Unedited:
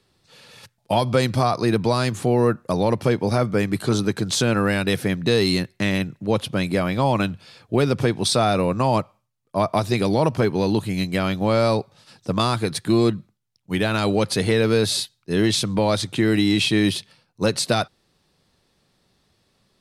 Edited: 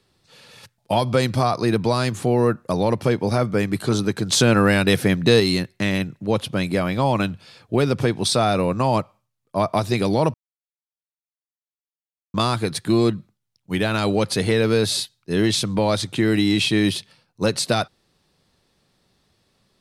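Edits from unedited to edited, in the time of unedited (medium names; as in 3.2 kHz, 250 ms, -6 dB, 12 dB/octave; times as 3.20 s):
4.32–5.40 s: gain +4 dB
10.34–12.34 s: mute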